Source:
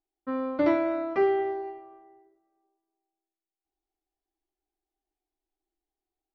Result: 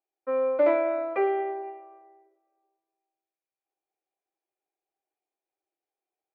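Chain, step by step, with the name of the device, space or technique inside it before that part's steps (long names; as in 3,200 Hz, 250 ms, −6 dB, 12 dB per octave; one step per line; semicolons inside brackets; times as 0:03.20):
tin-can telephone (band-pass filter 500–2,300 Hz; hollow resonant body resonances 520/2,400 Hz, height 12 dB, ringing for 25 ms)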